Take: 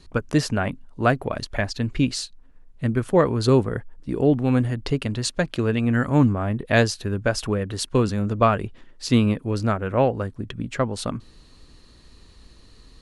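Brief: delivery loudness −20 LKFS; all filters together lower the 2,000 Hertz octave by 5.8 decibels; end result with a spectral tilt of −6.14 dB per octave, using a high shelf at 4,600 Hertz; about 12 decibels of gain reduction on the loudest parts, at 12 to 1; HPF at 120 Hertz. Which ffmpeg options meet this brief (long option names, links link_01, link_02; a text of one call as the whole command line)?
ffmpeg -i in.wav -af "highpass=120,equalizer=frequency=2000:width_type=o:gain=-6.5,highshelf=frequency=4600:gain=-9,acompressor=threshold=-25dB:ratio=12,volume=12dB" out.wav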